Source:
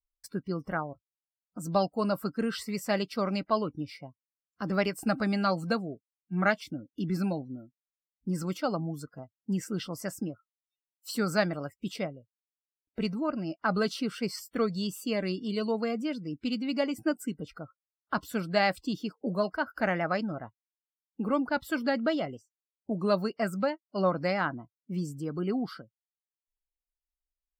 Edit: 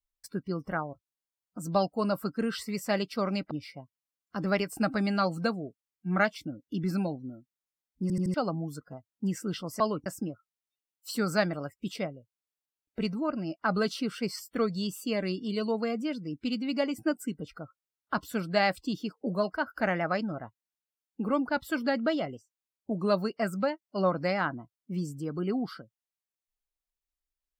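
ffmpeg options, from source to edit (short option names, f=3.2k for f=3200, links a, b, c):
-filter_complex "[0:a]asplit=8[a][b][c][d][e][f][g][h];[a]atrim=end=3.512[i];[b]atrim=start=3.768:end=8.362[j];[c]atrim=start=8.278:end=8.362[k];[d]atrim=start=8.278:end=8.362[l];[e]atrim=start=8.278:end=8.362[m];[f]atrim=start=8.598:end=10.062[n];[g]atrim=start=3.508:end=3.772[o];[h]atrim=start=10.058[p];[i][j]acrossfade=d=0.004:c1=hsin:c2=hsin[q];[q][k]acrossfade=d=0.004:c1=hsin:c2=hsin[r];[r][l]acrossfade=d=0.004:c1=hsin:c2=hsin[s];[s][m]acrossfade=d=0.004:c1=hsin:c2=hsin[t];[t][n]acrossfade=d=0.004:c1=hsin:c2=hsin[u];[u][o]acrossfade=d=0.004:c1=hsin:c2=hsin[v];[v][p]acrossfade=d=0.004:c1=hsin:c2=hsin"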